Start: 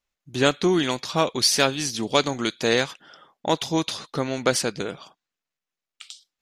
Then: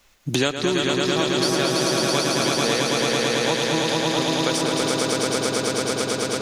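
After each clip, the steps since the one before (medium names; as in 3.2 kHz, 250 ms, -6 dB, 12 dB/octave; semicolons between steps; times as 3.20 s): echo with a slow build-up 110 ms, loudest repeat 5, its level -3.5 dB; three bands compressed up and down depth 100%; trim -5 dB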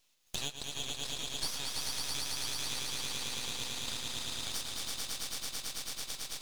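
ladder high-pass 2.5 kHz, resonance 25%; half-wave rectifier; trim -2 dB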